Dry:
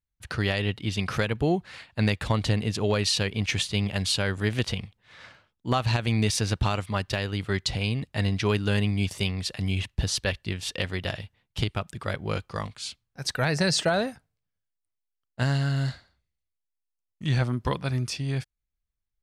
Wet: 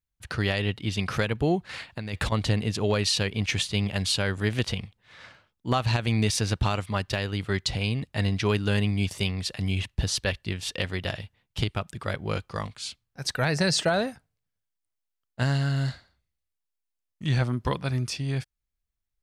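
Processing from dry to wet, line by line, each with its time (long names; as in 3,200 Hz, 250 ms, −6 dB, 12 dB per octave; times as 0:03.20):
0:01.69–0:02.32: compressor whose output falls as the input rises −31 dBFS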